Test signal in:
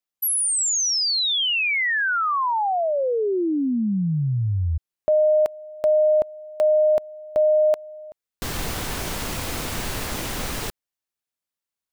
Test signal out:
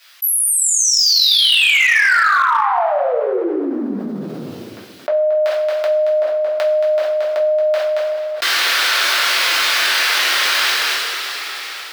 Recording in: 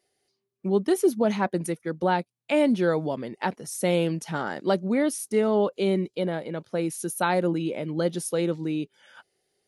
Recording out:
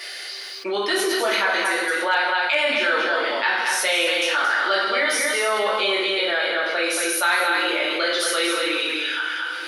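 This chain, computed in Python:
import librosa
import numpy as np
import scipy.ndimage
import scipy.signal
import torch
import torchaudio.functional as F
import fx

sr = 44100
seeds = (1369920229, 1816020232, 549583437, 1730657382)

p1 = scipy.signal.sosfilt(scipy.signal.bessel(6, 570.0, 'highpass', norm='mag', fs=sr, output='sos'), x)
p2 = fx.band_shelf(p1, sr, hz=2500.0, db=12.0, octaves=2.4)
p3 = p2 + fx.echo_single(p2, sr, ms=226, db=-6.0, dry=0)
p4 = fx.rev_double_slope(p3, sr, seeds[0], early_s=0.59, late_s=2.0, knee_db=-18, drr_db=-6.5)
p5 = 10.0 ** (-3.5 / 20.0) * (np.abs((p4 / 10.0 ** (-3.5 / 20.0) + 3.0) % 4.0 - 2.0) - 1.0)
p6 = p4 + (p5 * 10.0 ** (-7.5 / 20.0))
p7 = fx.env_flatten(p6, sr, amount_pct=70)
y = p7 * 10.0 ** (-13.0 / 20.0)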